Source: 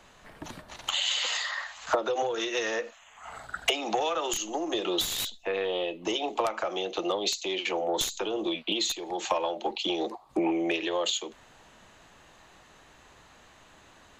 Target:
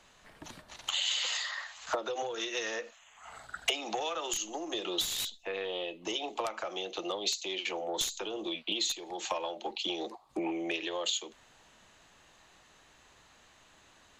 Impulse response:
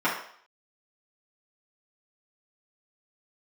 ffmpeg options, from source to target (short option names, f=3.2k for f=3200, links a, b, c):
-af "equalizer=f=5.8k:w=0.36:g=5.5,volume=-7.5dB"